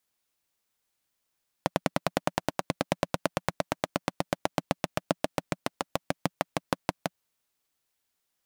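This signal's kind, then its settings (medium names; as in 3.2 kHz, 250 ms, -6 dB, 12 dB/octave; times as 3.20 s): single-cylinder engine model, changing speed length 5.53 s, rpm 1200, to 700, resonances 180/280/570 Hz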